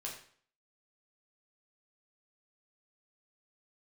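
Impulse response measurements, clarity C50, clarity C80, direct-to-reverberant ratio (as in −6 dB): 6.0 dB, 9.5 dB, −3.0 dB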